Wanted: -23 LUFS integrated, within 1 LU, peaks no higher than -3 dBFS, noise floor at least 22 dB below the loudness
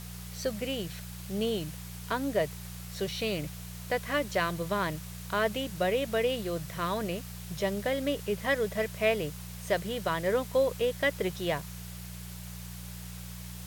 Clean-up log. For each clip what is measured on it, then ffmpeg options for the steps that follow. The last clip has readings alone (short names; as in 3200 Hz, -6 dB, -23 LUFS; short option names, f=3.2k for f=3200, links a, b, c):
hum 60 Hz; harmonics up to 180 Hz; hum level -40 dBFS; noise floor -43 dBFS; noise floor target -54 dBFS; loudness -31.5 LUFS; peak -14.5 dBFS; loudness target -23.0 LUFS
-> -af "bandreject=f=60:t=h:w=4,bandreject=f=120:t=h:w=4,bandreject=f=180:t=h:w=4"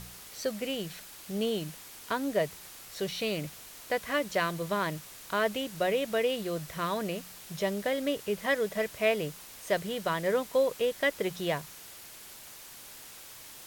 hum none; noise floor -48 dBFS; noise floor target -54 dBFS
-> -af "afftdn=nr=6:nf=-48"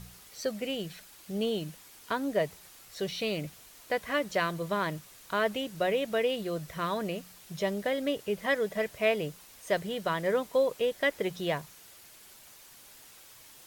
noise floor -54 dBFS; loudness -31.5 LUFS; peak -14.5 dBFS; loudness target -23.0 LUFS
-> -af "volume=8.5dB"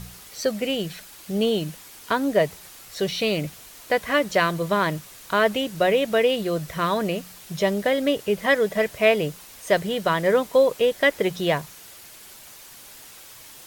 loudness -23.0 LUFS; peak -6.0 dBFS; noise floor -45 dBFS